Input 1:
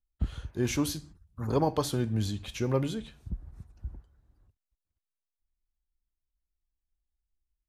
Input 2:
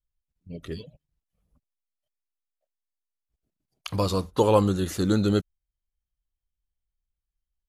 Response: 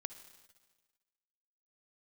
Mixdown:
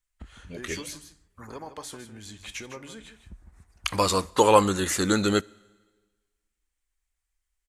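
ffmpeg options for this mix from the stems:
-filter_complex "[0:a]acompressor=threshold=-34dB:ratio=6,volume=-4dB,asplit=2[a][b];[b]volume=-11dB[c];[1:a]volume=-1dB,asplit=2[d][e];[e]volume=-12dB[f];[2:a]atrim=start_sample=2205[g];[f][g]afir=irnorm=-1:irlink=0[h];[c]aecho=0:1:156:1[i];[a][d][h][i]amix=inputs=4:normalize=0,equalizer=f=125:t=o:w=1:g=-9,equalizer=f=1k:t=o:w=1:g=4,equalizer=f=2k:t=o:w=1:g=11,equalizer=f=8k:t=o:w=1:g=12"

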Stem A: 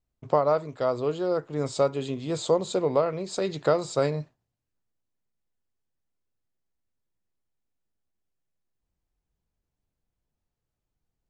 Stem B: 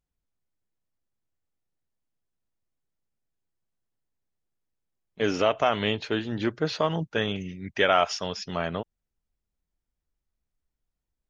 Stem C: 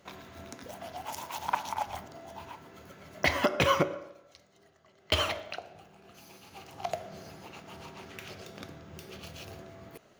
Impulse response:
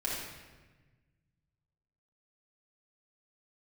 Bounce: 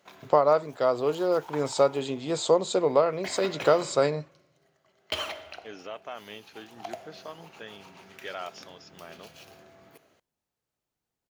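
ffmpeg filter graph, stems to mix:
-filter_complex "[0:a]volume=3dB,asplit=2[a][b];[1:a]adelay=450,volume=-15.5dB[c];[2:a]volume=-4.5dB,asplit=2[d][e];[e]volume=-15.5dB[f];[b]apad=whole_len=449678[g];[d][g]sidechaincompress=threshold=-28dB:ratio=8:attack=28:release=873[h];[3:a]atrim=start_sample=2205[i];[f][i]afir=irnorm=-1:irlink=0[j];[a][c][h][j]amix=inputs=4:normalize=0,highpass=f=320:p=1"

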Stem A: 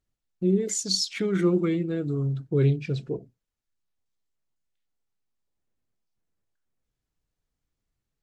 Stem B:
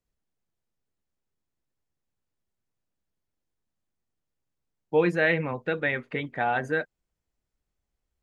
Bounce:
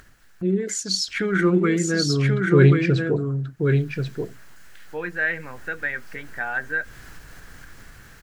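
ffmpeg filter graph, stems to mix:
-filter_complex "[0:a]acompressor=mode=upward:threshold=-31dB:ratio=2.5,volume=0dB,asplit=2[a][b];[b]volume=-6.5dB[c];[1:a]volume=-19.5dB,asplit=2[d][e];[e]apad=whole_len=362634[f];[a][f]sidechaincompress=threshold=-47dB:ratio=8:attack=6.4:release=215[g];[c]aecho=0:1:1084:1[h];[g][d][h]amix=inputs=3:normalize=0,equalizer=f=1.6k:t=o:w=0.68:g=15,bandreject=f=3.6k:w=26,dynaudnorm=f=440:g=9:m=10.5dB"

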